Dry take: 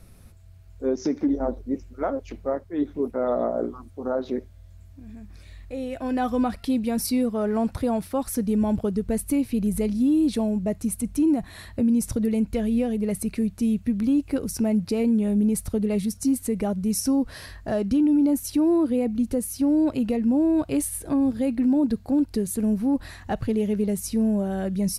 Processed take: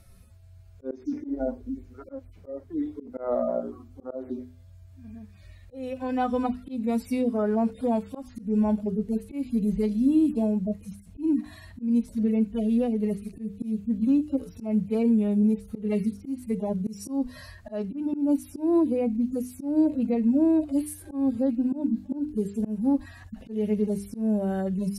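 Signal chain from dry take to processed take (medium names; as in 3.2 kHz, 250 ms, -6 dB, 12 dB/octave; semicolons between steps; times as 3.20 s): harmonic-percussive separation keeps harmonic; hum notches 50/100/150/200/250/300/350/400/450 Hz; slow attack 174 ms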